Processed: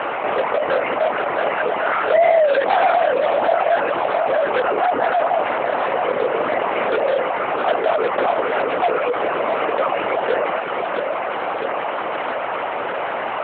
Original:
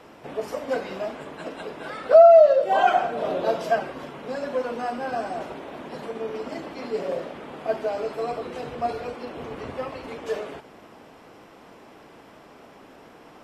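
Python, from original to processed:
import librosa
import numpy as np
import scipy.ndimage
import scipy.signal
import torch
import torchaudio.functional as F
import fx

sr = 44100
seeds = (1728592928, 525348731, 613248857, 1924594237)

p1 = fx.cvsd(x, sr, bps=16000)
p2 = (np.mod(10.0 ** (22.0 / 20.0) * p1 + 1.0, 2.0) - 1.0) / 10.0 ** (22.0 / 20.0)
p3 = p1 + F.gain(torch.from_numpy(p2), -6.5).numpy()
p4 = fx.high_shelf(p3, sr, hz=2000.0, db=-12.0)
p5 = p4 + fx.echo_feedback(p4, sr, ms=662, feedback_pct=53, wet_db=-11.5, dry=0)
p6 = fx.dereverb_blind(p5, sr, rt60_s=0.77)
p7 = fx.lpc_vocoder(p6, sr, seeds[0], excitation='whisper', order=8)
p8 = scipy.signal.sosfilt(scipy.signal.butter(2, 680.0, 'highpass', fs=sr, output='sos'), p7)
p9 = fx.air_absorb(p8, sr, metres=72.0)
p10 = fx.env_flatten(p9, sr, amount_pct=70)
y = F.gain(torch.from_numpy(p10), 3.5).numpy()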